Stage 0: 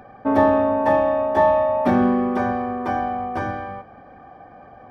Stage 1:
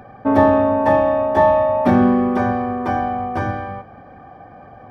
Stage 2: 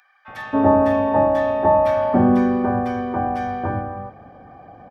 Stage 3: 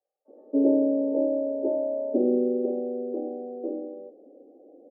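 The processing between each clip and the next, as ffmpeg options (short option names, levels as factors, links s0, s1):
-af "equalizer=f=110:w=0.95:g=5.5,volume=1.33"
-filter_complex "[0:a]acrossover=split=1500[s0][s1];[s0]adelay=280[s2];[s2][s1]amix=inputs=2:normalize=0,volume=0.841"
-af "asuperpass=centerf=390:order=8:qfactor=1.4"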